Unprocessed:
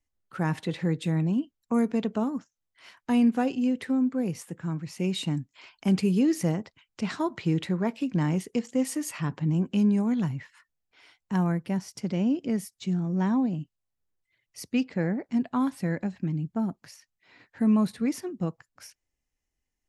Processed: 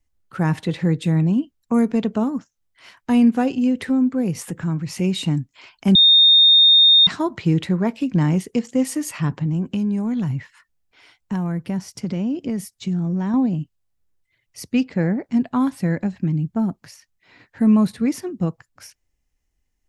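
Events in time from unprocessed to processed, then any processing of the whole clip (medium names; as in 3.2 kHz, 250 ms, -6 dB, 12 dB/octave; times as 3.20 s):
3.58–5.33 s: upward compressor, threshold -29 dBFS
5.95–7.07 s: bleep 3.67 kHz -13.5 dBFS
9.41–13.34 s: compression, threshold -26 dBFS
whole clip: bass shelf 130 Hz +8 dB; trim +5 dB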